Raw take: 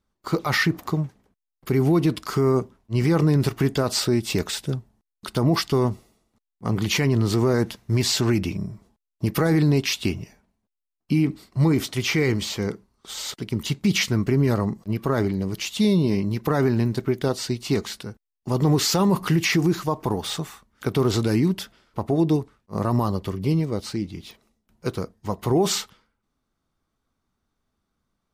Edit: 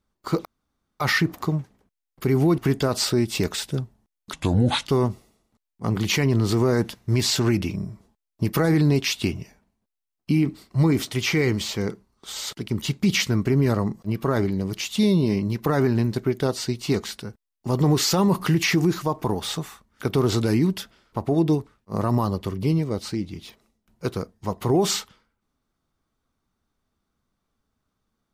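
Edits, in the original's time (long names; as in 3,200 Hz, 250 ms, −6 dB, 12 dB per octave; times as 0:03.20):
0:00.45: splice in room tone 0.55 s
0:02.03–0:03.53: remove
0:05.28–0:05.67: play speed 74%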